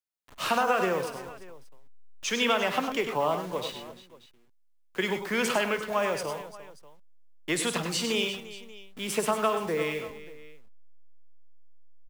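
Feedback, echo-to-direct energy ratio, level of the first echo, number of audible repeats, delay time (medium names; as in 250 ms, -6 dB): no regular repeats, -5.5 dB, -13.5 dB, 4, 53 ms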